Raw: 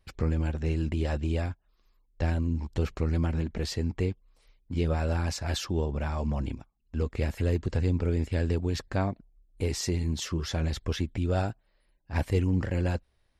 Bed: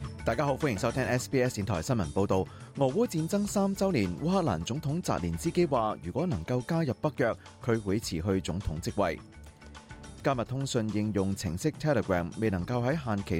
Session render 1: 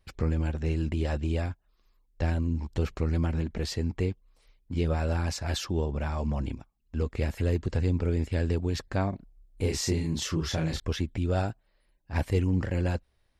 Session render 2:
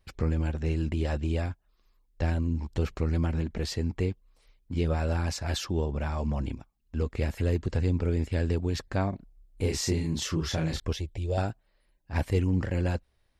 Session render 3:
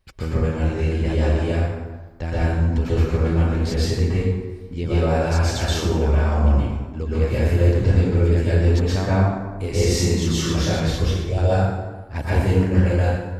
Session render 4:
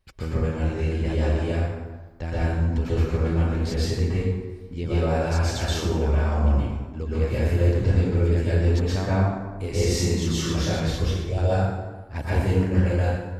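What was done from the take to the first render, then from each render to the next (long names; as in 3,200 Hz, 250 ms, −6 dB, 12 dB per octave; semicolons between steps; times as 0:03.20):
0:09.10–0:10.80: double-tracking delay 31 ms −2 dB
0:10.93–0:11.38: phaser with its sweep stopped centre 560 Hz, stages 4
dense smooth reverb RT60 1.3 s, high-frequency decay 0.6×, pre-delay 110 ms, DRR −9 dB
level −3.5 dB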